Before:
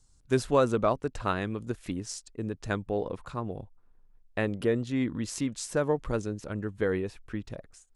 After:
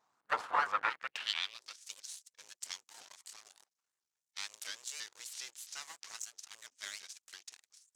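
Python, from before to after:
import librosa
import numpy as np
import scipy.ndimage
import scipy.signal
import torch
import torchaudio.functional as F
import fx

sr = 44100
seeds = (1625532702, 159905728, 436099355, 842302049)

p1 = fx.spec_gate(x, sr, threshold_db=-15, keep='weak')
p2 = np.maximum(p1, 0.0)
p3 = fx.quant_dither(p2, sr, seeds[0], bits=8, dither='none')
p4 = p2 + (p3 * librosa.db_to_amplitude(-5.0))
p5 = fx.filter_sweep_bandpass(p4, sr, from_hz=1100.0, to_hz=6600.0, start_s=0.58, end_s=1.83, q=2.4)
p6 = fx.vibrato_shape(p5, sr, shape='saw_up', rate_hz=3.0, depth_cents=250.0)
y = p6 * librosa.db_to_amplitude(12.5)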